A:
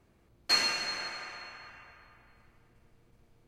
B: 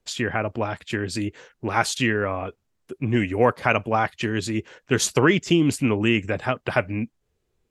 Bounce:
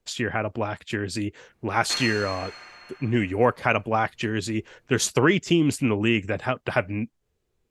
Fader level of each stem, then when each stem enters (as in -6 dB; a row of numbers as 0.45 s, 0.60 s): -2.5 dB, -1.5 dB; 1.40 s, 0.00 s